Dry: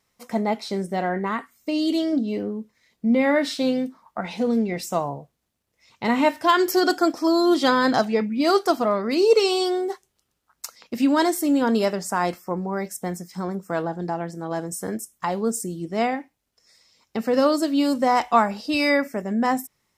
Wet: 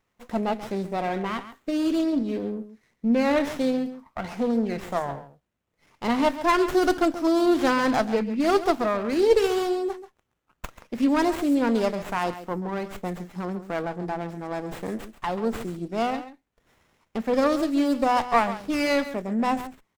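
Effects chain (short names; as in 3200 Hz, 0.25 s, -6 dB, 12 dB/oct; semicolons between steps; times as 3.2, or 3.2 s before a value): echo 0.136 s -13 dB; running maximum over 9 samples; gain -2 dB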